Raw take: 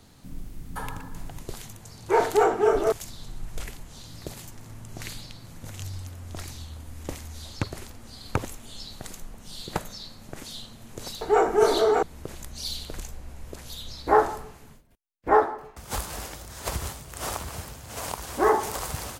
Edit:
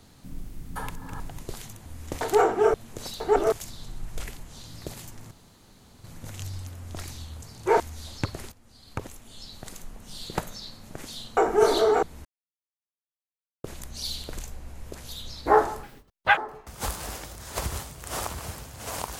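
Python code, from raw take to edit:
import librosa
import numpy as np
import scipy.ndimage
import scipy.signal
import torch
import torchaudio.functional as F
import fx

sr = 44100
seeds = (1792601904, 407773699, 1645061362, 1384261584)

y = fx.edit(x, sr, fx.reverse_span(start_s=0.9, length_s=0.3),
    fx.swap(start_s=1.85, length_s=0.38, other_s=6.82, other_length_s=0.36),
    fx.room_tone_fill(start_s=4.71, length_s=0.73),
    fx.fade_in_from(start_s=7.9, length_s=1.53, floor_db=-14.0),
    fx.move(start_s=10.75, length_s=0.62, to_s=2.76),
    fx.insert_silence(at_s=12.25, length_s=1.39),
    fx.speed_span(start_s=14.44, length_s=1.03, speed=1.9), tone=tone)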